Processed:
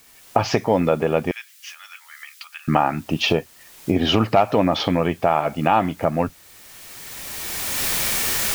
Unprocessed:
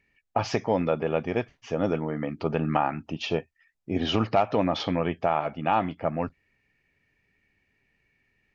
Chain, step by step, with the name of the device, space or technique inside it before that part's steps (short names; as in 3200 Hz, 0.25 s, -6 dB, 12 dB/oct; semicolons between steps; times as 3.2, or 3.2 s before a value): cheap recorder with automatic gain (white noise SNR 30 dB; recorder AGC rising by 18 dB/s); 1.31–2.68 Bessel high-pass 2400 Hz, order 6; gain +6 dB